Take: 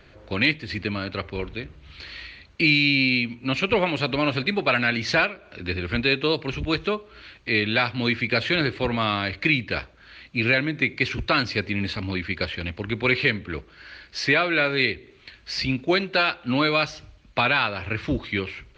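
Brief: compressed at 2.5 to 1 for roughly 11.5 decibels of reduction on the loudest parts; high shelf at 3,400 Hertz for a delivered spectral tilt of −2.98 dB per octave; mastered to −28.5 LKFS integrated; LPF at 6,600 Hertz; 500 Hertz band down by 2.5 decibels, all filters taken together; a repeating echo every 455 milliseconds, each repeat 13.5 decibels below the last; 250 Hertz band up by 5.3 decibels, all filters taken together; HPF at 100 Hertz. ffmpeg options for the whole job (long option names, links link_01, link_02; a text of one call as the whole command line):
ffmpeg -i in.wav -af "highpass=100,lowpass=6600,equalizer=frequency=250:width_type=o:gain=8.5,equalizer=frequency=500:width_type=o:gain=-6.5,highshelf=frequency=3400:gain=4.5,acompressor=threshold=-32dB:ratio=2.5,aecho=1:1:455|910:0.211|0.0444,volume=3dB" out.wav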